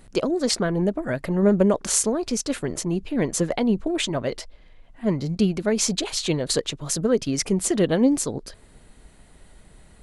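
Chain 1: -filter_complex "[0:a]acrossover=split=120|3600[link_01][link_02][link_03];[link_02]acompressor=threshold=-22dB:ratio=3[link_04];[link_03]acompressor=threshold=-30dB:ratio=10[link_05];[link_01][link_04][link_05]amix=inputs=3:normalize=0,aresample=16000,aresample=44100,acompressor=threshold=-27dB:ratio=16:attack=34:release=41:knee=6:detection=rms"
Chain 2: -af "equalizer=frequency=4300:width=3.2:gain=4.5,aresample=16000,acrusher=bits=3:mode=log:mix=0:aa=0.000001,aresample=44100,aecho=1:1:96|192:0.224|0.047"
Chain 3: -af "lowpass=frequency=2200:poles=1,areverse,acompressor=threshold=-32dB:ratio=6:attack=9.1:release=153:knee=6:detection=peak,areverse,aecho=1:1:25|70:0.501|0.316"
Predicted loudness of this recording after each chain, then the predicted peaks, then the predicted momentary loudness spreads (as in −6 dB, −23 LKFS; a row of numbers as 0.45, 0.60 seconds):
−30.0, −23.0, −34.0 LKFS; −11.0, −5.0, −20.0 dBFS; 3, 8, 20 LU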